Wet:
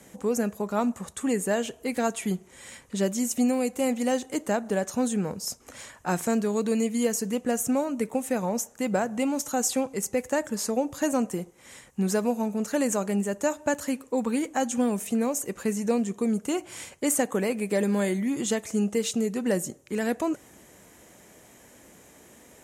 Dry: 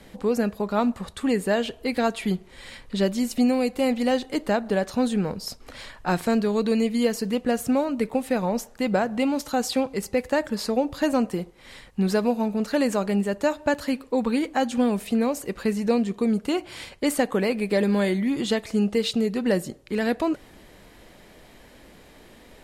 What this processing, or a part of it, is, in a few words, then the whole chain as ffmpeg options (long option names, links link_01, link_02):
budget condenser microphone: -af "highpass=83,highshelf=frequency=5400:width_type=q:width=3:gain=6.5,volume=-3dB"